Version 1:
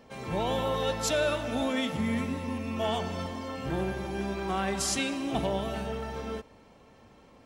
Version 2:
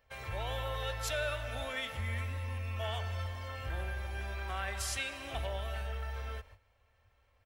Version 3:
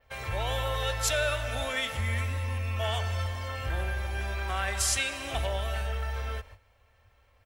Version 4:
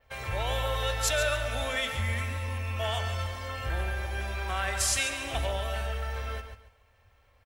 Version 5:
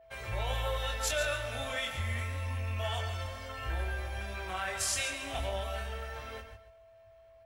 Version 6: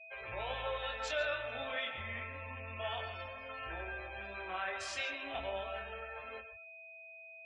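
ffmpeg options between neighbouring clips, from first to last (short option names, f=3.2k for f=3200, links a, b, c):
-filter_complex "[0:a]agate=range=-13dB:threshold=-51dB:ratio=16:detection=peak,firequalizer=gain_entry='entry(100,0);entry(150,-26);entry(290,-25);entry(570,-11);entry(870,-13);entry(1600,-4);entry(4400,-10);entry(6900,-12);entry(15000,0)':delay=0.05:min_phase=1,asplit=2[a][b];[b]acompressor=threshold=-49dB:ratio=6,volume=2.5dB[c];[a][c]amix=inputs=2:normalize=0"
-af "adynamicequalizer=threshold=0.00141:dfrequency=7700:dqfactor=0.98:tfrequency=7700:tqfactor=0.98:attack=5:release=100:ratio=0.375:range=3:mode=boostabove:tftype=bell,volume=6.5dB"
-af "aecho=1:1:140|280|420:0.316|0.0791|0.0198"
-af "flanger=delay=18:depth=7.7:speed=0.27,aeval=exprs='val(0)+0.002*sin(2*PI*660*n/s)':c=same,volume=-1.5dB"
-filter_complex "[0:a]acrossover=split=210 4500:gain=0.224 1 0.141[a][b][c];[a][b][c]amix=inputs=3:normalize=0,aeval=exprs='val(0)+0.00398*sin(2*PI*2500*n/s)':c=same,afftdn=nr=26:nf=-49,volume=-2.5dB"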